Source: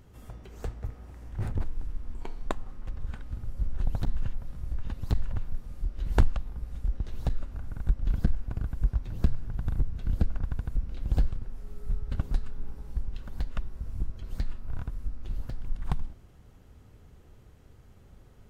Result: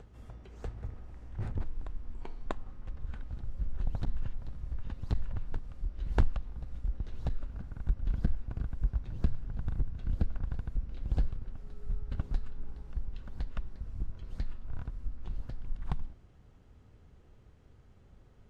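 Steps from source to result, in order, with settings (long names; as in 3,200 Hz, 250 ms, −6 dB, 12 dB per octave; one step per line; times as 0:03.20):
high-frequency loss of the air 61 metres
backwards echo 642 ms −15 dB
level −4.5 dB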